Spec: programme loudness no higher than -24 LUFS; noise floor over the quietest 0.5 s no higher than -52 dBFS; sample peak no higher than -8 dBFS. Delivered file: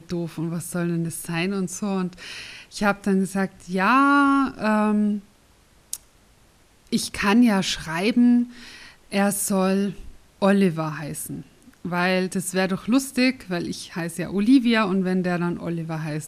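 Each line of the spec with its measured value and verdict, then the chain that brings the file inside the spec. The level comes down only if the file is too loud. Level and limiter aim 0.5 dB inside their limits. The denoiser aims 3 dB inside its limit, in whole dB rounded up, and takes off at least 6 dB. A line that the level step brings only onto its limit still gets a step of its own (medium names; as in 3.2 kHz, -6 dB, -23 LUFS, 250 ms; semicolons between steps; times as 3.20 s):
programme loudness -22.5 LUFS: fail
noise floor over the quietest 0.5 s -56 dBFS: pass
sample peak -6.5 dBFS: fail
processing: trim -2 dB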